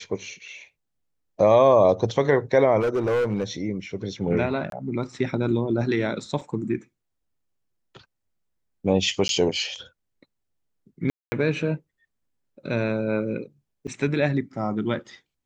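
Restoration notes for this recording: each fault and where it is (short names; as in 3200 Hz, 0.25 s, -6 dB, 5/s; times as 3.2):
2.8–3.44 clipped -19.5 dBFS
4.7–4.72 gap 22 ms
6.41 gap 4.3 ms
9.28–9.29 gap 12 ms
11.1–11.32 gap 0.22 s
13.87–13.88 gap 6.1 ms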